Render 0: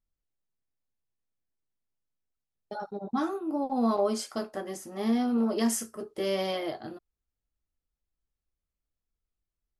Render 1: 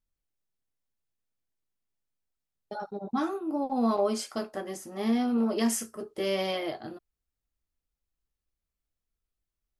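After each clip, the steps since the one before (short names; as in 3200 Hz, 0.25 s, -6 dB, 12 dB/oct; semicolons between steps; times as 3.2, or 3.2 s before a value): dynamic EQ 2500 Hz, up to +4 dB, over -52 dBFS, Q 2.4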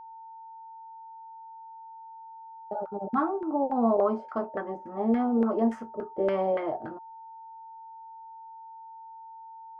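LFO low-pass saw down 3.5 Hz 490–1600 Hz; whine 900 Hz -43 dBFS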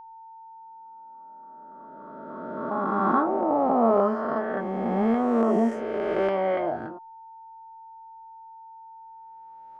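spectral swells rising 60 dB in 2.51 s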